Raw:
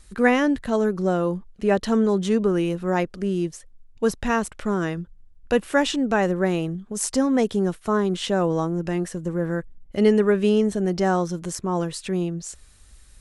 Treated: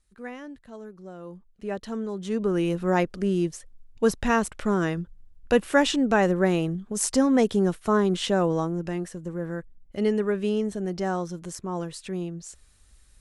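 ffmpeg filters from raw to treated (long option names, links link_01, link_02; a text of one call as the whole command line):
ffmpeg -i in.wav -af "afade=type=in:start_time=1.14:duration=0.5:silence=0.375837,afade=type=in:start_time=2.18:duration=0.59:silence=0.266073,afade=type=out:start_time=8.18:duration=0.94:silence=0.473151" out.wav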